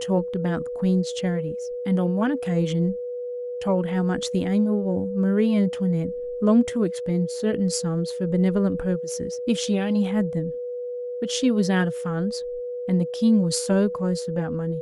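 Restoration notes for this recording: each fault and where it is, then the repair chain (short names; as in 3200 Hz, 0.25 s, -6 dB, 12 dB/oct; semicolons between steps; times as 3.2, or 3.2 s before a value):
tone 490 Hz -28 dBFS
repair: notch 490 Hz, Q 30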